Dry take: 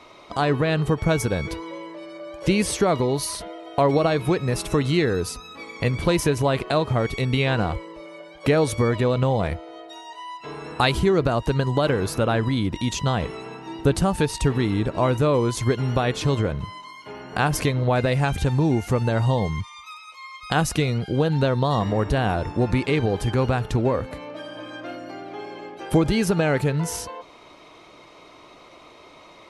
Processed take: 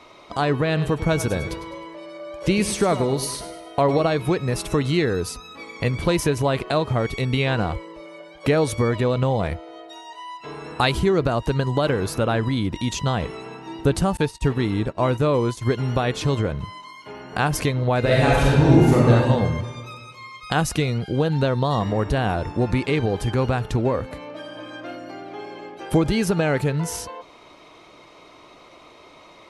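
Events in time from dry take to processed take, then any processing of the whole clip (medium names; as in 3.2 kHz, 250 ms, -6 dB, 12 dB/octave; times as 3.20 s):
0.66–4.02 s: feedback delay 102 ms, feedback 43%, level -12 dB
14.17–15.65 s: expander -23 dBFS
17.99–19.11 s: reverb throw, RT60 1.7 s, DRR -6 dB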